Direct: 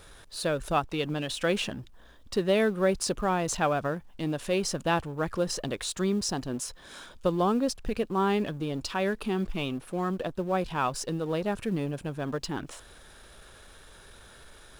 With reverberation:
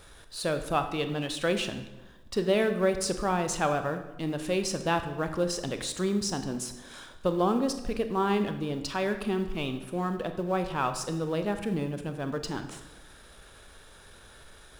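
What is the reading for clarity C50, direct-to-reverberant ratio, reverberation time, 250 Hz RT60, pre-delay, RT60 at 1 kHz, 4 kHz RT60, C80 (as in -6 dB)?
10.0 dB, 7.5 dB, 1.1 s, 1.2 s, 25 ms, 1.0 s, 0.80 s, 11.5 dB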